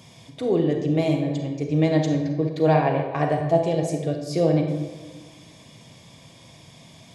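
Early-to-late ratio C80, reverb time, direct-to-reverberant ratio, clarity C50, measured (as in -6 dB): 6.5 dB, 1.3 s, 3.0 dB, 4.5 dB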